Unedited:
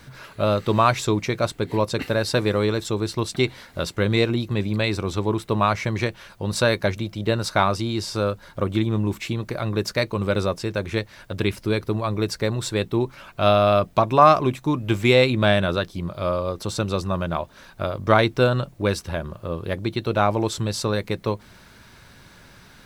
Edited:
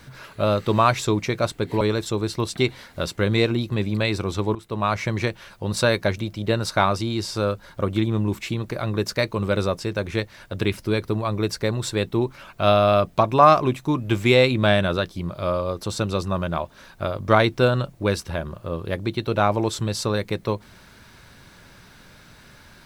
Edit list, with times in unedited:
0:01.81–0:02.60: remove
0:05.34–0:05.81: fade in, from −14.5 dB

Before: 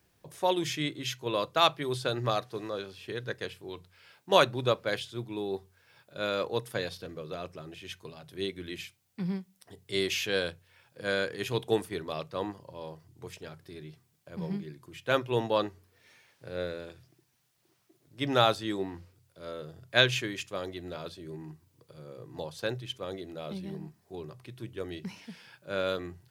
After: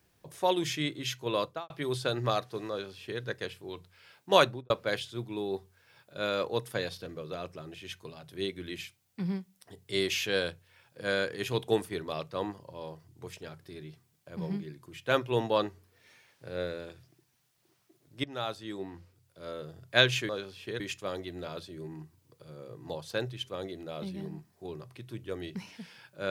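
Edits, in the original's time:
0:01.41–0:01.70: fade out and dull
0:02.70–0:03.21: duplicate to 0:20.29
0:04.45–0:04.70: fade out and dull
0:18.24–0:19.50: fade in, from −17.5 dB

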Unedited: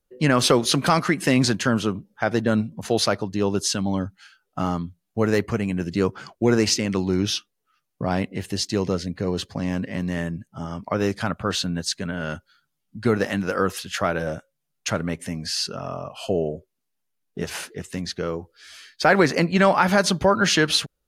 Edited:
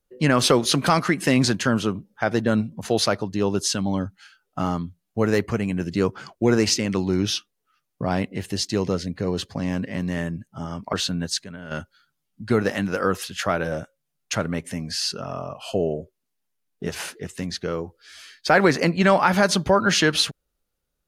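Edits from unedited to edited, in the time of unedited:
0:10.93–0:11.48: remove
0:11.99–0:12.26: clip gain −9 dB

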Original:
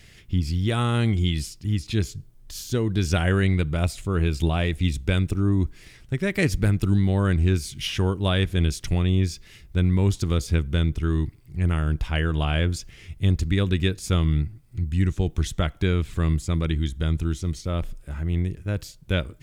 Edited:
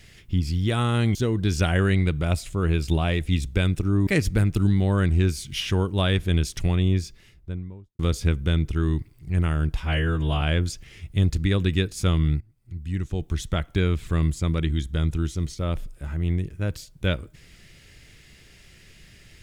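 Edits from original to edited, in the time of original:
0:01.15–0:02.67: remove
0:05.59–0:06.34: remove
0:09.04–0:10.26: fade out and dull
0:12.07–0:12.48: time-stretch 1.5×
0:14.47–0:15.84: fade in, from −15.5 dB

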